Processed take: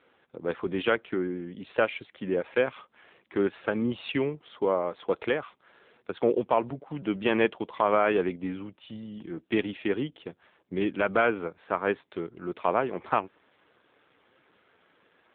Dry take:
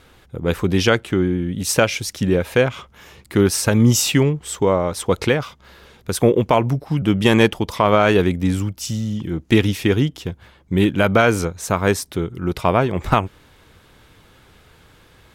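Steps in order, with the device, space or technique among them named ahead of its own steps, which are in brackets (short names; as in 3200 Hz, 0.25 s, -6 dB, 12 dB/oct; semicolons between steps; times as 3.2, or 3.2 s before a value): telephone (BPF 300–3400 Hz; gain -7 dB; AMR-NB 7.4 kbps 8000 Hz)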